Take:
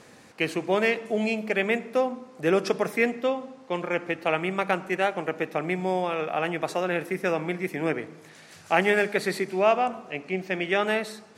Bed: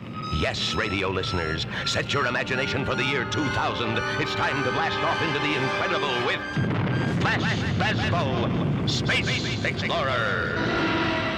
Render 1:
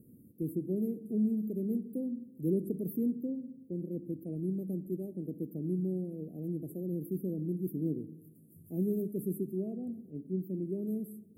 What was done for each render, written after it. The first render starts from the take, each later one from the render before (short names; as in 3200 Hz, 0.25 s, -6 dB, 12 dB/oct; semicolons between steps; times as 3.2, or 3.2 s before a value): inverse Chebyshev band-stop 910–5700 Hz, stop band 60 dB; high shelf 9600 Hz +9 dB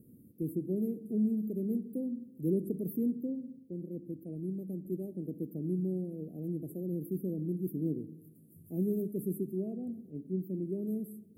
3.59–4.85 gain -3 dB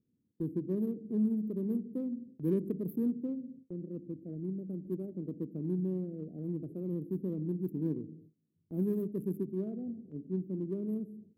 Wiener smoothing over 25 samples; gate with hold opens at -44 dBFS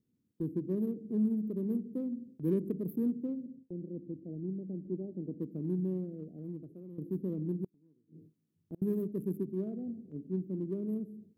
3.46–5.4 Chebyshev low-pass 860 Hz, order 4; 5.91–6.98 fade out, to -14 dB; 7.64–8.82 flipped gate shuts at -31 dBFS, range -33 dB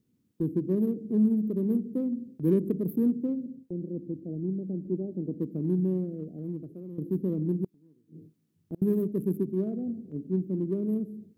gain +6.5 dB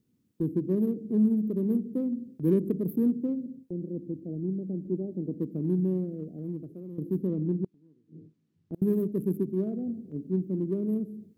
7.27–8.74 air absorption 94 m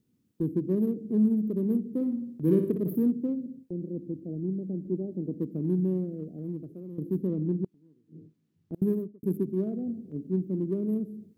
1.88–3.03 flutter echo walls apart 10.1 m, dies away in 0.51 s; 8.82–9.23 studio fade out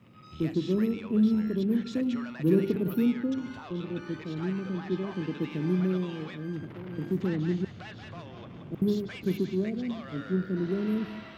add bed -20 dB